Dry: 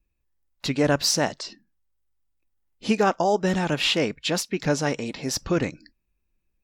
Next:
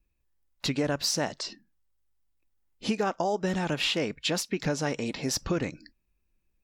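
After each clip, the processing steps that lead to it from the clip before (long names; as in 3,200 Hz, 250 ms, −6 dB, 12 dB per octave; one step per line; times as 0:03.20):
downward compressor 4 to 1, threshold −25 dBFS, peak gain reduction 8.5 dB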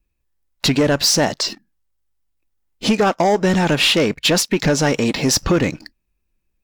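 leveller curve on the samples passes 2
level +7 dB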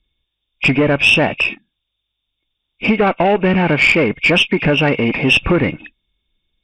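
hearing-aid frequency compression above 2,100 Hz 4 to 1
tube saturation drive 5 dB, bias 0.3
level +3 dB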